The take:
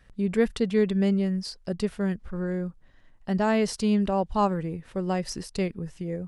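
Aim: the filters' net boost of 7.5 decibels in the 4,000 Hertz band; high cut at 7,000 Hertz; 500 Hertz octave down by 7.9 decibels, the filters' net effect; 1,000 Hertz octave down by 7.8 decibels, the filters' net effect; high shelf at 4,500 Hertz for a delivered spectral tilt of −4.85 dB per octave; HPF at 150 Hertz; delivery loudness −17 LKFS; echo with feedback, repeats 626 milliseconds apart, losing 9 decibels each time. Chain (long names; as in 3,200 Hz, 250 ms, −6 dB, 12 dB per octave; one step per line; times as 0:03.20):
high-pass filter 150 Hz
low-pass filter 7,000 Hz
parametric band 500 Hz −8.5 dB
parametric band 1,000 Hz −7.5 dB
parametric band 4,000 Hz +7 dB
high-shelf EQ 4,500 Hz +6.5 dB
repeating echo 626 ms, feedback 35%, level −9 dB
level +12.5 dB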